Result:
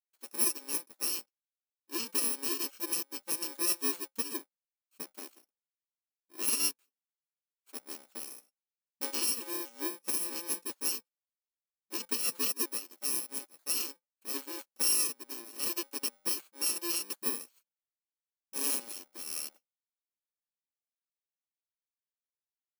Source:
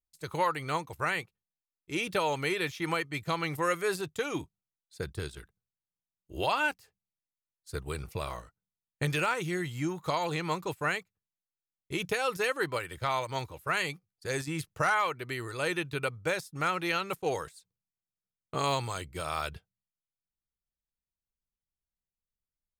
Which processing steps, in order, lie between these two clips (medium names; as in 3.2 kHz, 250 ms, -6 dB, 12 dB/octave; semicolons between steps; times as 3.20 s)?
bit-reversed sample order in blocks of 64 samples; brick-wall FIR high-pass 210 Hz; upward expansion 1.5:1, over -51 dBFS